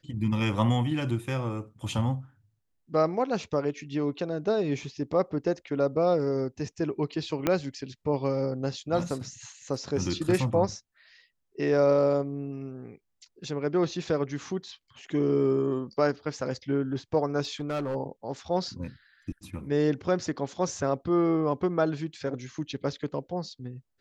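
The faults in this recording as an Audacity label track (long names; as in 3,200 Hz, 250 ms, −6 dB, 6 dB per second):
7.470000	7.470000	click −10 dBFS
17.430000	17.960000	clipping −26.5 dBFS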